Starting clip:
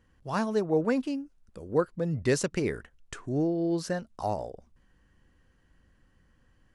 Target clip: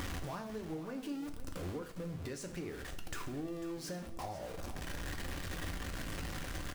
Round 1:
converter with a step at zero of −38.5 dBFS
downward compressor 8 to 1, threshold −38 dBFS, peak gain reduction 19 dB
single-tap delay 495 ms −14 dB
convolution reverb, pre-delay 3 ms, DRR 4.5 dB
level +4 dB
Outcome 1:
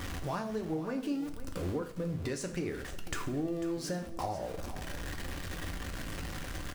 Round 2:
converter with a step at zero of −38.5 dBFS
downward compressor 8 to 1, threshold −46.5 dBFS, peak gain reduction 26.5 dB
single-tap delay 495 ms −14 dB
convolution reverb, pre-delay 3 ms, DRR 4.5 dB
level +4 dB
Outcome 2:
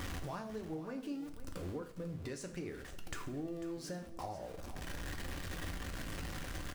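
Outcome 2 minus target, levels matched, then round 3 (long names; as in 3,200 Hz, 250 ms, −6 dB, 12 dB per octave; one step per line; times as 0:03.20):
converter with a step at zero: distortion −7 dB
converter with a step at zero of −30 dBFS
downward compressor 8 to 1, threshold −46.5 dBFS, peak gain reduction 26.5 dB
single-tap delay 495 ms −14 dB
convolution reverb, pre-delay 3 ms, DRR 4.5 dB
level +4 dB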